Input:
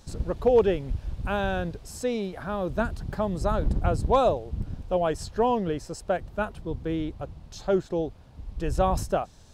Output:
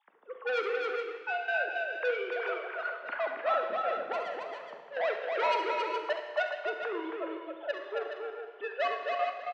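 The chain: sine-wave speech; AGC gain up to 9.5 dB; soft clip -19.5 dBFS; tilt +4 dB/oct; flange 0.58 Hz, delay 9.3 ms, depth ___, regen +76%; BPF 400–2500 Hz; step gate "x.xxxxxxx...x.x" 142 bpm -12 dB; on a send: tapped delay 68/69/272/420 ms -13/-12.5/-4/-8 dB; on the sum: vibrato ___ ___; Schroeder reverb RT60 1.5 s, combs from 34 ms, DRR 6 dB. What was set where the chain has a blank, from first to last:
6.6 ms, 4.1 Hz, 26 cents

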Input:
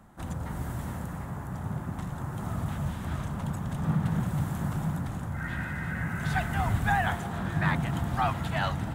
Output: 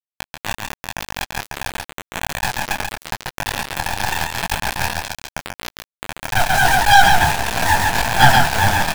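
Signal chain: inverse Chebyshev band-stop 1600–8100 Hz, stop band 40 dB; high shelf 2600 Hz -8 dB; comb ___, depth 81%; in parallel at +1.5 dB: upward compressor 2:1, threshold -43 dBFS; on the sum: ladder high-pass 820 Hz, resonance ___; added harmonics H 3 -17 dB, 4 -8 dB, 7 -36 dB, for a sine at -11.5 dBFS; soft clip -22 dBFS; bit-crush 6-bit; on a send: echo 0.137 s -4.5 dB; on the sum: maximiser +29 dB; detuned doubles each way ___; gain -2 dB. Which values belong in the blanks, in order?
1.4 ms, 75%, 30 cents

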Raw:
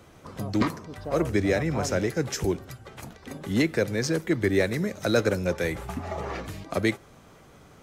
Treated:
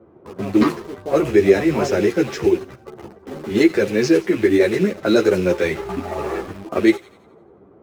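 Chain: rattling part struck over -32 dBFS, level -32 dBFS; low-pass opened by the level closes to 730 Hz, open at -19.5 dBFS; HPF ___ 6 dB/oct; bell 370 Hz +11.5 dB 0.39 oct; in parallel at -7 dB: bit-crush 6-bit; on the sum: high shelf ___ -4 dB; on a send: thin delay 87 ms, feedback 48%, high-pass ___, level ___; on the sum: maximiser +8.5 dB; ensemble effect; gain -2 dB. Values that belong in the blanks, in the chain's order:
180 Hz, 7200 Hz, 3000 Hz, -17 dB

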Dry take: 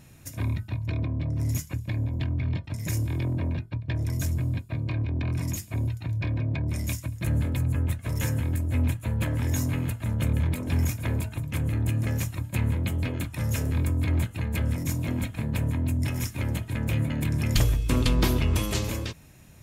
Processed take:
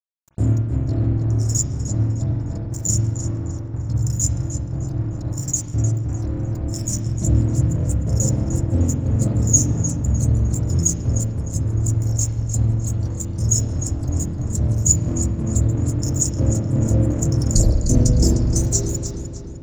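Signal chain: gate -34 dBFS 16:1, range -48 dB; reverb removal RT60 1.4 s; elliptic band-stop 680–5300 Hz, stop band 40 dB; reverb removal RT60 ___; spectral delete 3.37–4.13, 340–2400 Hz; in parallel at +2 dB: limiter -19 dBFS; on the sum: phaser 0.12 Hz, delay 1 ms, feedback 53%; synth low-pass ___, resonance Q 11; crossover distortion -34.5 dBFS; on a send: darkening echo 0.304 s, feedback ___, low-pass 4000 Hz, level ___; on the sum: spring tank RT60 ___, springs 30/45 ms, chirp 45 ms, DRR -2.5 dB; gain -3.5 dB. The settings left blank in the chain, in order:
0.99 s, 7000 Hz, 58%, -6 dB, 1.1 s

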